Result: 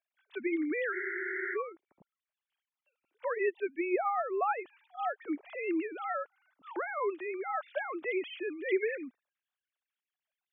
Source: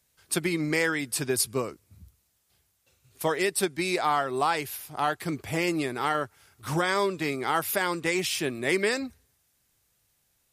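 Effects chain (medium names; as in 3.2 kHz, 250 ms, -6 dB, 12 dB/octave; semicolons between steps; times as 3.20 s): formants replaced by sine waves; spectral freeze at 0.95 s, 0.60 s; trim -6.5 dB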